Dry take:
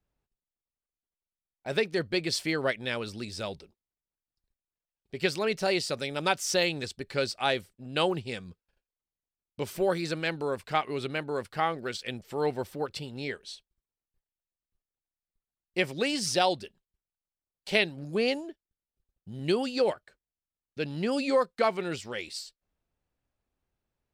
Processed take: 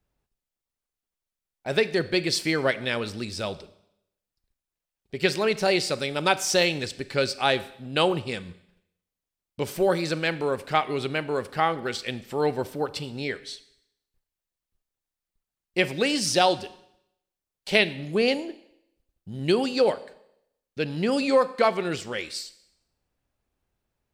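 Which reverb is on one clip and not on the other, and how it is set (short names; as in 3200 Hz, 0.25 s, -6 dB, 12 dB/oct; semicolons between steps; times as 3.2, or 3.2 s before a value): Schroeder reverb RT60 0.77 s, combs from 30 ms, DRR 15 dB; gain +4.5 dB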